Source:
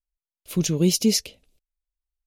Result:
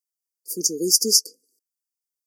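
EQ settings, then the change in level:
high-pass filter 290 Hz 24 dB per octave
linear-phase brick-wall band-stop 520–4,500 Hz
high-shelf EQ 2,200 Hz +10 dB
−1.0 dB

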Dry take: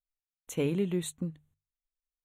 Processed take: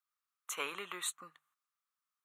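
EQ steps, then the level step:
high-pass with resonance 1,200 Hz, resonance Q 7.3
+1.5 dB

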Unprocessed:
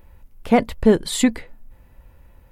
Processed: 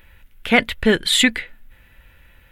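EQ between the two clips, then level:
flat-topped bell 2,300 Hz +13.5 dB
high-shelf EQ 4,100 Hz +7.5 dB
−2.5 dB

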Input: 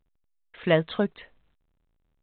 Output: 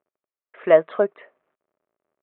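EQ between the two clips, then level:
loudspeaker in its box 350–2,300 Hz, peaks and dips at 390 Hz +7 dB, 610 Hz +10 dB, 1,200 Hz +6 dB
+1.0 dB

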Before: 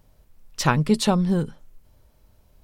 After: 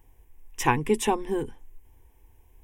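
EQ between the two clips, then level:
phaser with its sweep stopped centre 890 Hz, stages 8
+2.0 dB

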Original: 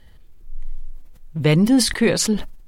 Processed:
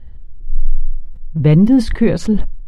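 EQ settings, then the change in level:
low-pass filter 1,300 Hz 6 dB per octave
low-shelf EQ 93 Hz +10.5 dB
low-shelf EQ 340 Hz +5.5 dB
0.0 dB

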